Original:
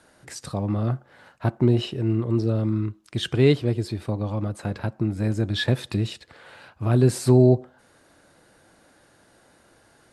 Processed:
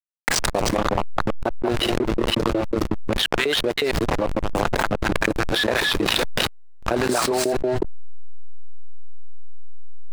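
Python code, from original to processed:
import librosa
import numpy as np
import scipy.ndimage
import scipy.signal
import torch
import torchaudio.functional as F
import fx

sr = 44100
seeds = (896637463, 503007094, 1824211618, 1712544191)

p1 = fx.reverse_delay(x, sr, ms=261, wet_db=-1)
p2 = fx.level_steps(p1, sr, step_db=21)
p3 = p1 + F.gain(torch.from_numpy(p2), 2.0).numpy()
p4 = fx.filter_lfo_highpass(p3, sr, shape='saw_up', hz=5.5, low_hz=370.0, high_hz=2400.0, q=1.3)
p5 = fx.backlash(p4, sr, play_db=-24.0)
p6 = fx.env_flatten(p5, sr, amount_pct=100)
y = F.gain(torch.from_numpy(p6), -10.0).numpy()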